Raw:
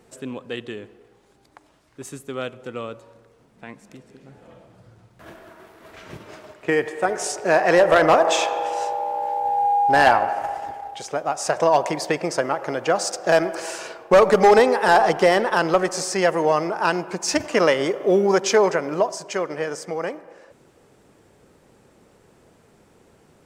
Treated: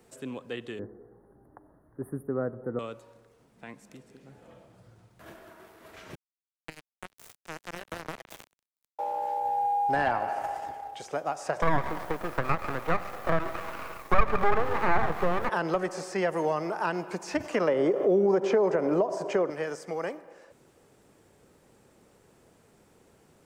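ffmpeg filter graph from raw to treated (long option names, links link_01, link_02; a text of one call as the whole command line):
ffmpeg -i in.wav -filter_complex "[0:a]asettb=1/sr,asplit=3[link_01][link_02][link_03];[link_01]atrim=end=0.794[link_04];[link_02]atrim=start=0.79:end=2.79,asetpts=PTS-STARTPTS,afade=type=in:duration=0.004:curve=qsin,afade=type=out:start_time=1.996:duration=0.004:curve=qsin,asuperstop=centerf=4400:order=20:qfactor=0.59,tiltshelf=frequency=1100:gain=8.5[link_05];[link_03]atrim=start=2.786[link_06];[link_04][link_05]acrossfade=duration=0.004:curve1=hsin:curve2=qsin[link_07];[link_07][link_06]acrossfade=duration=0.004:curve1=qsin:curve2=hsin,asettb=1/sr,asplit=3[link_08][link_09][link_10];[link_08]atrim=end=6.154[link_11];[link_09]atrim=start=6.15:end=8.99,asetpts=PTS-STARTPTS,afade=type=in:duration=0.004:curve=qsin,afade=type=out:start_time=2.836:duration=0.004:curve=qsin,bass=frequency=250:gain=13,treble=frequency=4000:gain=13,acompressor=threshold=-31dB:ratio=2:attack=3.2:release=140:knee=1:detection=peak,acrusher=bits=2:mix=0:aa=0.5[link_12];[link_10]atrim=start=8.986[link_13];[link_11][link_12]acrossfade=duration=0.004:curve1=hsin:curve2=qsin[link_14];[link_14][link_13]acrossfade=duration=0.004:curve1=qsin:curve2=hsin,asettb=1/sr,asplit=3[link_15][link_16][link_17];[link_15]atrim=end=11.624[link_18];[link_16]atrim=start=11.62:end=15.49,asetpts=PTS-STARTPTS,afade=type=in:duration=0.004:curve=qsin,afade=type=out:start_time=3.866:duration=0.004:curve=qsin,lowpass=frequency=1200:width_type=q:width=8.1,acrusher=bits=5:dc=4:mix=0:aa=0.000001,aeval=exprs='max(val(0),0)':channel_layout=same[link_19];[link_17]atrim=start=15.486[link_20];[link_18][link_19]acrossfade=duration=0.004:curve1=hsin:curve2=qsin[link_21];[link_21][link_20]acrossfade=duration=0.004:curve1=qsin:curve2=hsin,asettb=1/sr,asplit=3[link_22][link_23][link_24];[link_22]atrim=end=17.684[link_25];[link_23]atrim=start=17.68:end=19.5,asetpts=PTS-STARTPTS,afade=type=in:duration=0.004:curve=qsin,afade=type=out:start_time=1.816:duration=0.004:curve=qsin,equalizer=frequency=440:width=0.38:gain=14.5,acompressor=threshold=-15dB:ratio=2:attack=3.2:release=140:knee=1:detection=peak[link_26];[link_24]atrim=start=19.496[link_27];[link_25][link_26]acrossfade=duration=0.004:curve1=hsin:curve2=qsin[link_28];[link_28][link_27]acrossfade=duration=0.004:curve1=qsin:curve2=hsin,acrossover=split=2900[link_29][link_30];[link_30]acompressor=threshold=-42dB:ratio=4:attack=1:release=60[link_31];[link_29][link_31]amix=inputs=2:normalize=0,highshelf=frequency=8800:gain=7,acrossover=split=250[link_32][link_33];[link_33]acompressor=threshold=-20dB:ratio=2.5[link_34];[link_32][link_34]amix=inputs=2:normalize=0,volume=-5.5dB" out.wav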